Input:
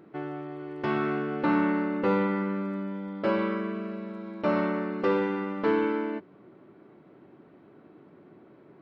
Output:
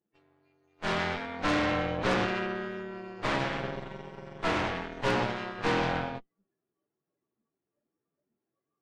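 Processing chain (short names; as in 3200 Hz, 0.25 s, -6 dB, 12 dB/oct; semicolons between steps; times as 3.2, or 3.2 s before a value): inharmonic rescaling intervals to 113%; in parallel at -2 dB: compressor 6:1, threshold -38 dBFS, peak gain reduction 16 dB; on the sum: spectral noise reduction 19 dB; added harmonics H 3 -17 dB, 4 -12 dB, 7 -26 dB, 8 -15 dB, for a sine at -13 dBFS; gain -3.5 dB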